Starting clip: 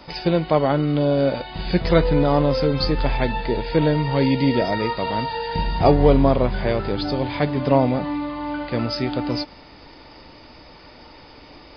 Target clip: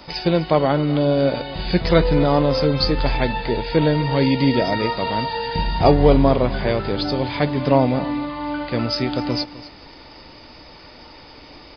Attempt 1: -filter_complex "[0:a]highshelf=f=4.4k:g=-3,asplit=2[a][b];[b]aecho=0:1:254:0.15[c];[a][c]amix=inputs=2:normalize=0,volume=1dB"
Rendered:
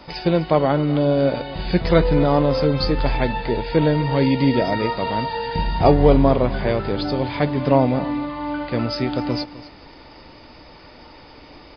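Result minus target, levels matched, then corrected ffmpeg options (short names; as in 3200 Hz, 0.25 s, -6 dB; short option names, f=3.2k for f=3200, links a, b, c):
8000 Hz band -5.5 dB
-filter_complex "[0:a]highshelf=f=4.4k:g=6,asplit=2[a][b];[b]aecho=0:1:254:0.15[c];[a][c]amix=inputs=2:normalize=0,volume=1dB"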